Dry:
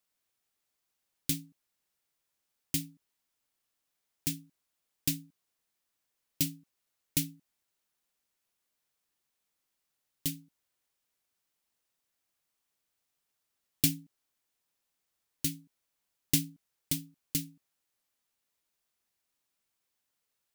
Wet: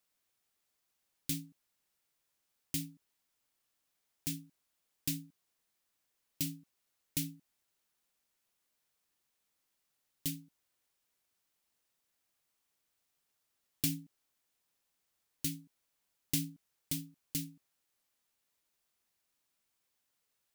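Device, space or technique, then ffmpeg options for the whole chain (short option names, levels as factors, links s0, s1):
clipper into limiter: -af "asoftclip=type=hard:threshold=0.2,alimiter=limit=0.0841:level=0:latency=1:release=82,volume=1.12"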